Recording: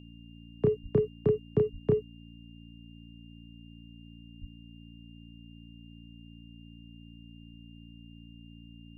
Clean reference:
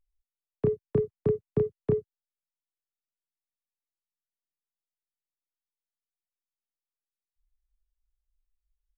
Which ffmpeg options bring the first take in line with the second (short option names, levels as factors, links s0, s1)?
-filter_complex "[0:a]bandreject=f=57.3:t=h:w=4,bandreject=f=114.6:t=h:w=4,bandreject=f=171.9:t=h:w=4,bandreject=f=229.2:t=h:w=4,bandreject=f=286.5:t=h:w=4,bandreject=f=2800:w=30,asplit=3[s0][s1][s2];[s0]afade=t=out:st=0.82:d=0.02[s3];[s1]highpass=f=140:w=0.5412,highpass=f=140:w=1.3066,afade=t=in:st=0.82:d=0.02,afade=t=out:st=0.94:d=0.02[s4];[s2]afade=t=in:st=0.94:d=0.02[s5];[s3][s4][s5]amix=inputs=3:normalize=0,asplit=3[s6][s7][s8];[s6]afade=t=out:st=1.72:d=0.02[s9];[s7]highpass=f=140:w=0.5412,highpass=f=140:w=1.3066,afade=t=in:st=1.72:d=0.02,afade=t=out:st=1.84:d=0.02[s10];[s8]afade=t=in:st=1.84:d=0.02[s11];[s9][s10][s11]amix=inputs=3:normalize=0,asplit=3[s12][s13][s14];[s12]afade=t=out:st=4.4:d=0.02[s15];[s13]highpass=f=140:w=0.5412,highpass=f=140:w=1.3066,afade=t=in:st=4.4:d=0.02,afade=t=out:st=4.52:d=0.02[s16];[s14]afade=t=in:st=4.52:d=0.02[s17];[s15][s16][s17]amix=inputs=3:normalize=0"